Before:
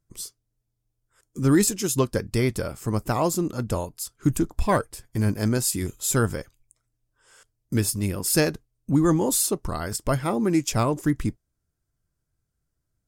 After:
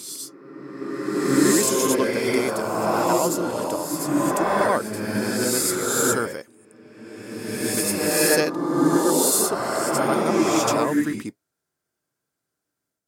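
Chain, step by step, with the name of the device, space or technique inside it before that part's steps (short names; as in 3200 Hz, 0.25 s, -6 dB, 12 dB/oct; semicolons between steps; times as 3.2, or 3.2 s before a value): ghost voice (reverse; reverb RT60 2.4 s, pre-delay 64 ms, DRR -5.5 dB; reverse; HPF 310 Hz 12 dB/oct)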